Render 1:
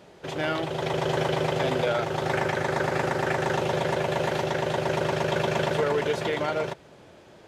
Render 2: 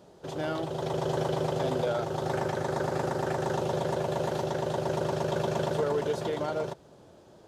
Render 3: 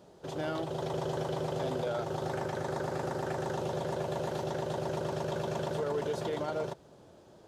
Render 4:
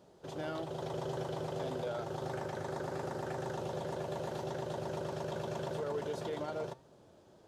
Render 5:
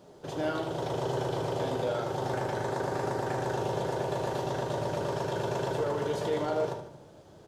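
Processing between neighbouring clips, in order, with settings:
peaking EQ 2.2 kHz -12 dB 1.1 oct; trim -2.5 dB
peak limiter -22.5 dBFS, peak gain reduction 5 dB; trim -2 dB
flange 0.88 Hz, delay 7.4 ms, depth 3.7 ms, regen +88%
feedback delay 75 ms, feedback 46%, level -11 dB; reverberation RT60 0.55 s, pre-delay 7 ms, DRR 4.5 dB; trim +6 dB

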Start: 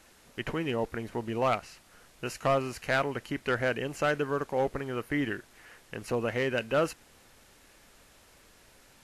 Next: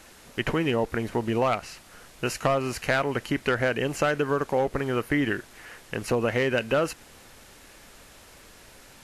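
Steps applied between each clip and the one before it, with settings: compression, threshold -28 dBFS, peak gain reduction 6.5 dB; trim +8 dB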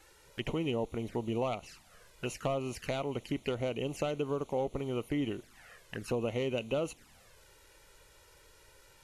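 touch-sensitive flanger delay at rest 2.5 ms, full sweep at -25 dBFS; trim -7 dB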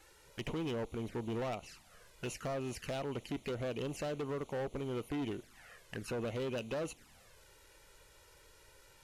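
hard clipper -32.5 dBFS, distortion -10 dB; trim -1.5 dB

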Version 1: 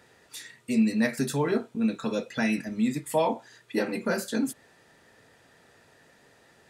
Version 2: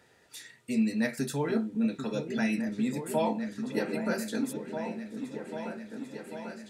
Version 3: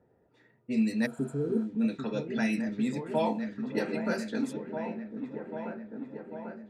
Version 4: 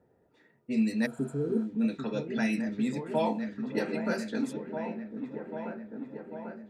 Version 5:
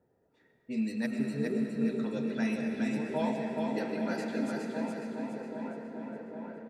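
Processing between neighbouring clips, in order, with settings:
band-stop 1.1 kHz, Q 9.8; delay with an opening low-pass 794 ms, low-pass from 400 Hz, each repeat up 2 oct, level -6 dB; trim -4 dB
level-controlled noise filter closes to 590 Hz, open at -24 dBFS; spectral replace 1.08–1.58 s, 550–6800 Hz after
hum notches 60/120 Hz
feedback delay 415 ms, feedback 42%, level -4 dB; on a send at -5 dB: reverberation RT60 3.3 s, pre-delay 70 ms; on the sum: trim -5 dB

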